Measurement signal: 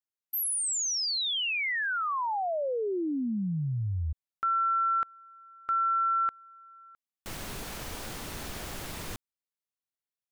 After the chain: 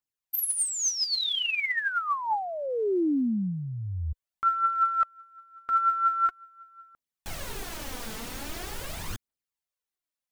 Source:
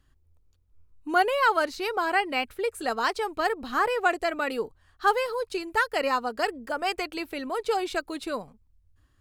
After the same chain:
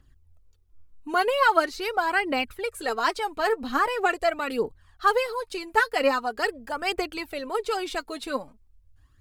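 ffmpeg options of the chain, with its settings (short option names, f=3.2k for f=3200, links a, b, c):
-af "aphaser=in_gain=1:out_gain=1:delay=4.7:decay=0.55:speed=0.43:type=triangular"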